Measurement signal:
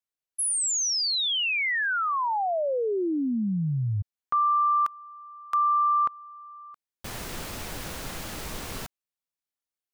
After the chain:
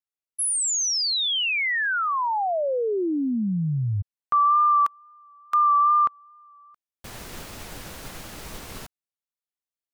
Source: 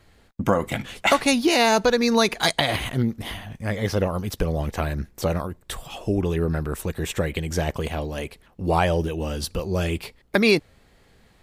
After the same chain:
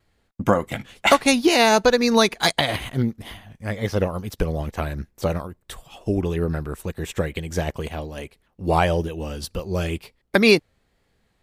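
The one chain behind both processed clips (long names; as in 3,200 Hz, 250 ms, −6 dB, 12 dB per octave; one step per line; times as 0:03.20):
tape wow and flutter 29 cents
expander for the loud parts 1.5 to 1, over −43 dBFS
level +4 dB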